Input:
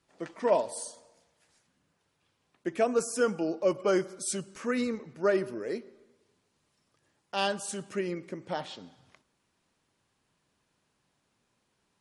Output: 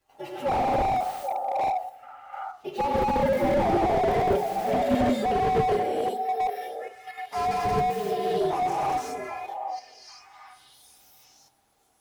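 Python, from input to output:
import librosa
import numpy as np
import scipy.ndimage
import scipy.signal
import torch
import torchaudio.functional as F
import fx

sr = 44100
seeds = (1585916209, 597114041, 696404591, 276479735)

p1 = fx.partial_stretch(x, sr, pct=123)
p2 = fx.peak_eq(p1, sr, hz=790.0, db=14.0, octaves=0.31)
p3 = fx.echo_stepped(p2, sr, ms=784, hz=650.0, octaves=1.4, feedback_pct=70, wet_db=-10)
p4 = fx.rev_gated(p3, sr, seeds[0], gate_ms=400, shape='rising', drr_db=-8.0)
p5 = fx.level_steps(p4, sr, step_db=22)
p6 = p4 + F.gain(torch.from_numpy(p5), 2.0).numpy()
p7 = fx.peak_eq(p6, sr, hz=160.0, db=-10.5, octaves=0.56)
p8 = fx.hum_notches(p7, sr, base_hz=60, count=7)
y = fx.slew_limit(p8, sr, full_power_hz=53.0)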